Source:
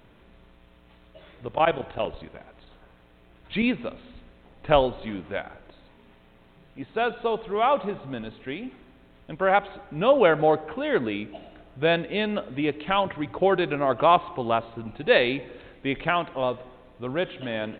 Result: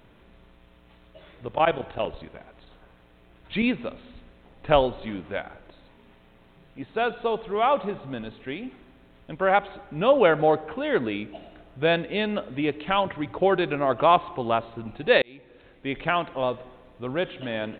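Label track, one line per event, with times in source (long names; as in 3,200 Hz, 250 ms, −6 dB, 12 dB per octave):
15.220000	16.140000	fade in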